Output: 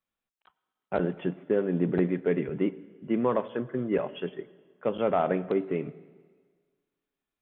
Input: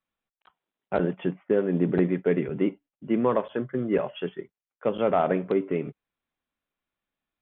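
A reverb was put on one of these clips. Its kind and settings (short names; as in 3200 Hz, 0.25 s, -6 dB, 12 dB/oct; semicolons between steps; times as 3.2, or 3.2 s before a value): plate-style reverb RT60 1.6 s, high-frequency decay 0.95×, pre-delay 75 ms, DRR 19.5 dB; gain -2.5 dB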